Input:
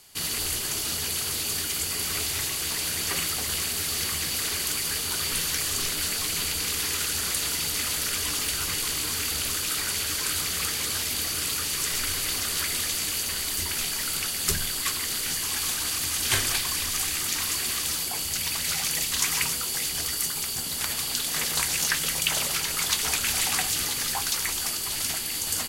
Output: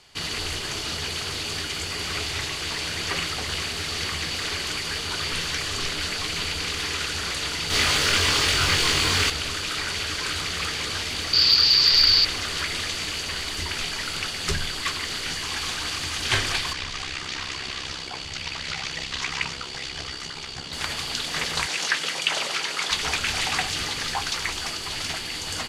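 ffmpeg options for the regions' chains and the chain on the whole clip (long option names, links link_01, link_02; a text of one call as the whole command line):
ffmpeg -i in.wav -filter_complex "[0:a]asettb=1/sr,asplit=3[link_01][link_02][link_03];[link_01]atrim=end=7.704[link_04];[link_02]atrim=start=7.7:end=9.3,asetpts=PTS-STARTPTS,afade=type=in:duration=0.004:curve=qsin,afade=type=out:start_time=1.596:duration=0.004:curve=qsin,asplit=2[link_05][link_06];[link_06]adelay=22,volume=-2dB[link_07];[link_05][link_07]amix=inputs=2:normalize=0,atrim=end_sample=70560,acontrast=36,aeval=exprs='val(0)+0.0708*sin(2*PI*15000*n/s)':channel_layout=same[link_08];[link_03]atrim=start=9.296[link_09];[link_04][link_08]acrossfade=duration=0.004:curve1=hsin:curve2=qsin[link_10];[link_10][link_09]acrossfade=duration=0.004:curve1=qsin:curve2=hsin,asettb=1/sr,asplit=3[link_11][link_12][link_13];[link_11]atrim=end=11.334[link_14];[link_12]atrim=start=11.33:end=12.25,asetpts=PTS-STARTPTS,afade=type=in:duration=0.004:curve=qsin,afade=type=out:start_time=0.916:duration=0.004:curve=qsin,lowpass=frequency=4700:width_type=q:width=11,asplit=2[link_15][link_16];[link_16]adelay=15,volume=-13.5dB[link_17];[link_15][link_17]amix=inputs=2:normalize=0,atrim=end_sample=40572[link_18];[link_13]atrim=start=12.246[link_19];[link_14][link_18]acrossfade=duration=0.004:curve1=hsin:curve2=qsin[link_20];[link_20][link_19]acrossfade=duration=0.004:curve1=qsin:curve2=hsin,asettb=1/sr,asplit=3[link_21][link_22][link_23];[link_21]atrim=end=16.734[link_24];[link_22]atrim=start=16.73:end=20.73,asetpts=PTS-STARTPTS,afade=type=in:duration=0.004:curve=qsin,afade=type=out:start_time=3.996:duration=0.004:curve=qsin,lowpass=6400,tremolo=f=66:d=0.621[link_25];[link_23]atrim=start=20.726[link_26];[link_24][link_25]acrossfade=duration=0.004:curve1=hsin:curve2=qsin[link_27];[link_27][link_26]acrossfade=duration=0.004:curve1=qsin:curve2=hsin,asettb=1/sr,asplit=3[link_28][link_29][link_30];[link_28]atrim=end=21.664[link_31];[link_29]atrim=start=21.66:end=22.91,asetpts=PTS-STARTPTS,afade=type=in:duration=0.004:curve=qsin,afade=type=out:start_time=1.246:duration=0.004:curve=qsin,highpass=270,equalizer=frequency=15000:width=2.3:gain=-14[link_32];[link_30]atrim=start=22.906[link_33];[link_31][link_32]acrossfade=duration=0.004:curve1=hsin:curve2=qsin[link_34];[link_34][link_33]acrossfade=duration=0.004:curve1=qsin:curve2=hsin,lowpass=4400,equalizer=frequency=230:width=1.8:gain=-3,acontrast=73,volume=-2.5dB" out.wav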